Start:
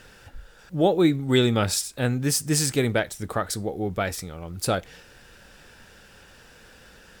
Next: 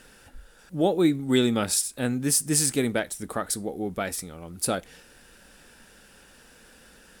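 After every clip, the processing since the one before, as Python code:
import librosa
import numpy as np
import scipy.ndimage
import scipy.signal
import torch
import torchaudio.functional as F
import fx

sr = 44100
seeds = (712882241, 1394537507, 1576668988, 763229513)

y = fx.graphic_eq_15(x, sr, hz=(100, 250, 10000), db=(-8, 5, 10))
y = y * librosa.db_to_amplitude(-3.5)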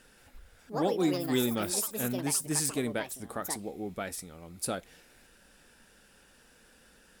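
y = fx.echo_pitch(x, sr, ms=176, semitones=6, count=3, db_per_echo=-6.0)
y = y * librosa.db_to_amplitude(-7.0)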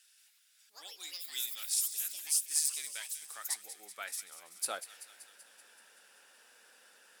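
y = fx.filter_sweep_highpass(x, sr, from_hz=3500.0, to_hz=620.0, start_s=2.58, end_s=5.26, q=0.76)
y = fx.echo_wet_highpass(y, sr, ms=191, feedback_pct=65, hz=2200.0, wet_db=-12.0)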